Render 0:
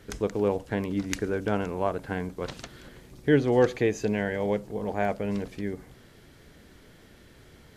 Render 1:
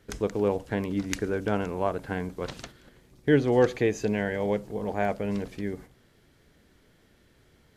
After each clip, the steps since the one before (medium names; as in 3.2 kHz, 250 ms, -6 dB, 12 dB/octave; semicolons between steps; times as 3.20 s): gate -44 dBFS, range -8 dB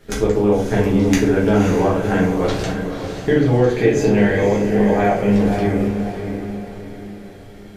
compression, threshold -27 dBFS, peak gain reduction 11 dB; echo that smears into a reverb 550 ms, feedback 45%, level -7 dB; simulated room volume 61 m³, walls mixed, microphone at 1.3 m; trim +7 dB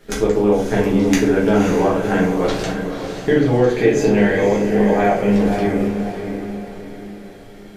peaking EQ 78 Hz -15 dB 0.75 oct; trim +1 dB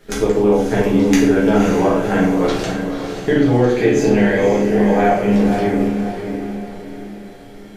Schroeder reverb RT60 0.38 s, combs from 25 ms, DRR 6.5 dB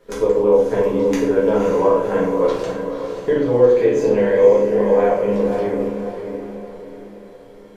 small resonant body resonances 510/990 Hz, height 17 dB, ringing for 35 ms; trim -9.5 dB